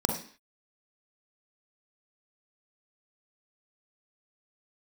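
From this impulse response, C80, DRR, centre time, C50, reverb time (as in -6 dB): 10.5 dB, 2.5 dB, 26 ms, 5.5 dB, 0.45 s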